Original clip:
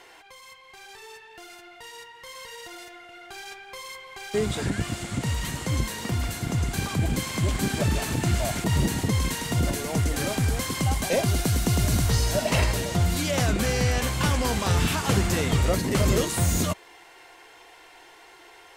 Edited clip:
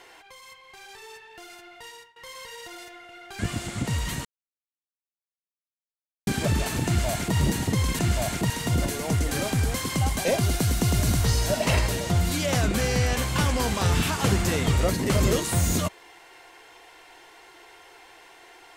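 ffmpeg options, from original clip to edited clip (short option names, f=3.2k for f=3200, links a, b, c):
-filter_complex "[0:a]asplit=7[a][b][c][d][e][f][g];[a]atrim=end=2.16,asetpts=PTS-STARTPTS,afade=t=out:st=1.88:d=0.28:silence=0.0841395[h];[b]atrim=start=2.16:end=3.392,asetpts=PTS-STARTPTS,afade=t=in:d=0.004:c=hsin:silence=0.0841395[i];[c]atrim=start=4.748:end=5.61,asetpts=PTS-STARTPTS,afade=t=out:st=0.858:d=0.004:c=hsin[j];[d]atrim=start=5.61:end=7.63,asetpts=PTS-STARTPTS,volume=0[k];[e]atrim=start=7.63:end=9.352,asetpts=PTS-STARTPTS,afade=t=in:d=0.004:c=hsin[l];[f]atrim=start=8.218:end=8.732[m];[g]atrim=start=9.348[n];[h][i]concat=n=2:v=0:a=1[o];[j][k][l]concat=n=3:v=0:a=1[p];[o][p]acrossfade=d=0.004:c1=hsin:c2=hsin[q];[q][m]acrossfade=d=0.004:c1=hsin:c2=hsin[r];[r][n]acrossfade=d=0.004:c1=hsin:c2=hsin"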